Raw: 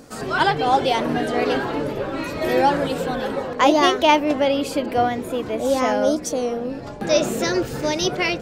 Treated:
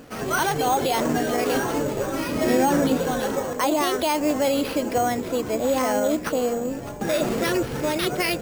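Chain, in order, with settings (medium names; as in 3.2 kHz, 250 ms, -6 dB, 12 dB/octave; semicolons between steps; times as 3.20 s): peak limiter -13.5 dBFS, peak gain reduction 10.5 dB; careless resampling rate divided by 6×, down none, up hold; 2.29–2.97 s: peaking EQ 240 Hz +9.5 dB 0.67 oct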